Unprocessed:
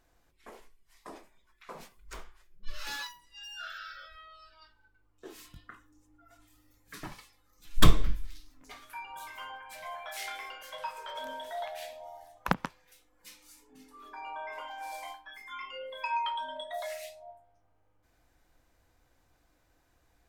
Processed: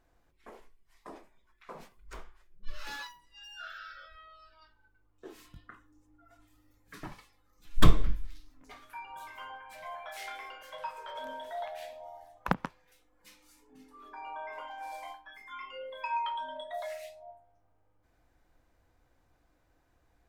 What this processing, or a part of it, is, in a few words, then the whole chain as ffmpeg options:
behind a face mask: -af "highshelf=frequency=2700:gain=-8"

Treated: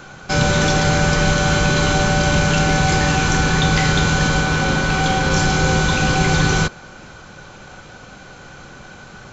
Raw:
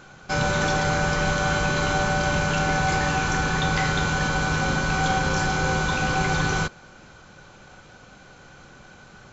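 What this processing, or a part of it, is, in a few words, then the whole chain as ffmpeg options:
one-band saturation: -filter_complex "[0:a]asettb=1/sr,asplit=3[link_01][link_02][link_03];[link_01]atrim=end=4.414[link_04];[link_02]atrim=start=4.41:end=5.32,asetpts=PTS-STARTPTS,afade=type=in:duration=0.004:curve=qsin,afade=type=out:start_time=0.906:duration=0.004:curve=qsin,bass=frequency=250:gain=-3,treble=frequency=4000:gain=-4[link_05];[link_03]atrim=start=5.316[link_06];[link_04][link_05]acrossfade=duration=0.004:curve1=hsin:curve2=qsin[link_07];[link_07][link_06]acrossfade=duration=0.004:curve1=qsin:curve2=hsin,acrossover=split=530|2100[link_08][link_09][link_10];[link_09]asoftclip=type=tanh:threshold=-30.5dB[link_11];[link_08][link_11][link_10]amix=inputs=3:normalize=0,volume=8.5dB"

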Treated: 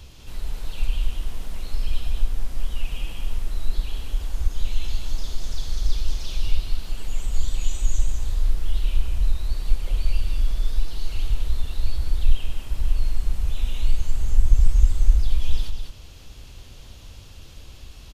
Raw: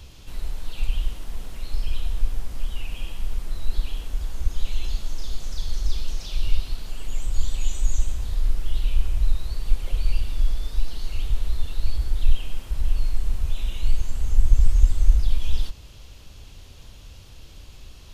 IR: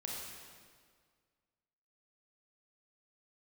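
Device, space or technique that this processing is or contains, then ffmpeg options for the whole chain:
ducked delay: -filter_complex "[0:a]asplit=3[link_01][link_02][link_03];[link_02]adelay=198,volume=-3dB[link_04];[link_03]apad=whole_len=808321[link_05];[link_04][link_05]sidechaincompress=threshold=-16dB:ratio=8:attack=16:release=1040[link_06];[link_01][link_06]amix=inputs=2:normalize=0"

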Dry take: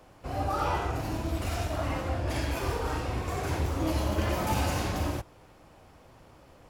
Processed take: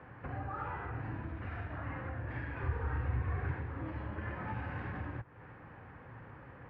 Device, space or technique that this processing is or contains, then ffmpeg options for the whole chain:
bass amplifier: -filter_complex "[0:a]acompressor=threshold=-43dB:ratio=4,highpass=65,equalizer=frequency=120:width_type=q:width=4:gain=7,equalizer=frequency=350:width_type=q:width=4:gain=-4,equalizer=frequency=640:width_type=q:width=4:gain=-9,equalizer=frequency=1700:width_type=q:width=4:gain=9,lowpass=frequency=2200:width=0.5412,lowpass=frequency=2200:width=1.3066,asettb=1/sr,asplit=3[link_01][link_02][link_03];[link_01]atrim=end=2.574[link_04];[link_02]atrim=start=2.57:end=3.52,asetpts=PTS-STARTPTS,afade=type=in:duration=0.004:curve=qsin,afade=type=out:start_time=0.946:duration=0.004:curve=qsin,equalizer=frequency=73:width_type=o:width=0.97:gain=12[link_05];[link_03]atrim=start=3.516[link_06];[link_04][link_05]acrossfade=duration=0.004:curve1=hsin:curve2=qsin[link_07];[link_07][link_06]acrossfade=duration=0.004:curve1=qsin:curve2=hsin,volume=3.5dB"

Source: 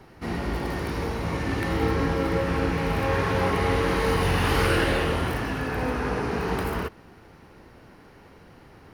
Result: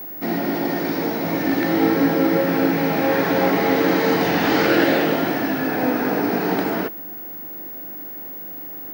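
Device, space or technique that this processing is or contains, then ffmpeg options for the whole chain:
old television with a line whistle: -filter_complex "[0:a]asettb=1/sr,asplit=3[link_01][link_02][link_03];[link_01]atrim=end=4.314[link_04];[link_02]atrim=start=4.31:end=4.81,asetpts=PTS-STARTPTS,afade=type=in:duration=0.004:curve=qsin,afade=type=out:start_time=0.496:duration=0.004:curve=qsin,acrossover=split=8400[link_05][link_06];[link_06]acompressor=threshold=-52dB:ratio=4:attack=1:release=60[link_07];[link_05][link_07]amix=inputs=2:normalize=0[link_08];[link_03]atrim=start=4.806[link_09];[link_04][link_08]acrossfade=duration=0.004:curve1=hsin:curve2=qsin[link_10];[link_10][link_09]acrossfade=duration=0.004:curve1=qsin:curve2=hsin,highpass=frequency=170:width=0.5412,highpass=frequency=170:width=1.3066,equalizer=frequency=300:width_type=q:width=4:gain=8,equalizer=frequency=420:width_type=q:width=4:gain=-3,equalizer=frequency=670:width_type=q:width=4:gain=6,equalizer=frequency=1100:width_type=q:width=4:gain=-8,equalizer=frequency=2800:width_type=q:width=4:gain=-5,lowpass=frequency=7000:width=0.5412,lowpass=frequency=7000:width=1.3066,aeval=exprs='val(0)+0.0141*sin(2*PI*15625*n/s)':channel_layout=same,volume=6dB"

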